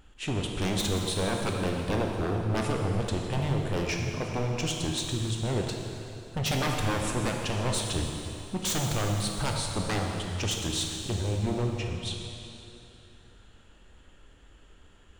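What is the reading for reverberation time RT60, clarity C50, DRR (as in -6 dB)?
2.9 s, 2.0 dB, 1.0 dB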